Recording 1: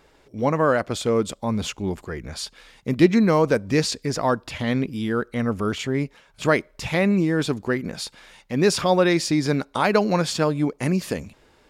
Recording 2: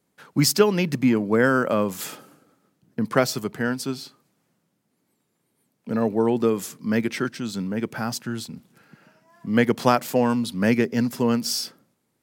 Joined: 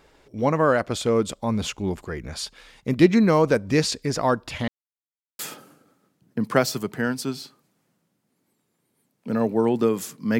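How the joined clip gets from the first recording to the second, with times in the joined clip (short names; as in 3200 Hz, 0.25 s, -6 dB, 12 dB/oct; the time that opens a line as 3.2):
recording 1
4.68–5.39 mute
5.39 switch to recording 2 from 2 s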